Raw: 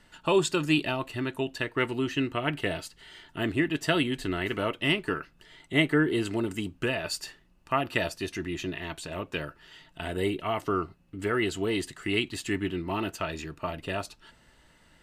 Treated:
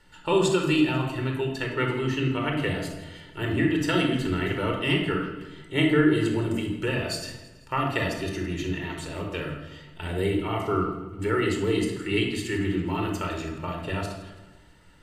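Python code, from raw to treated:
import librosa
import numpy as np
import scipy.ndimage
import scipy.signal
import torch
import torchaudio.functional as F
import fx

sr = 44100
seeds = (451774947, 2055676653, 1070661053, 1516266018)

y = fx.echo_feedback(x, sr, ms=164, feedback_pct=52, wet_db=-18)
y = fx.room_shoebox(y, sr, seeds[0], volume_m3=2900.0, walls='furnished', distance_m=4.4)
y = F.gain(torch.from_numpy(y), -2.5).numpy()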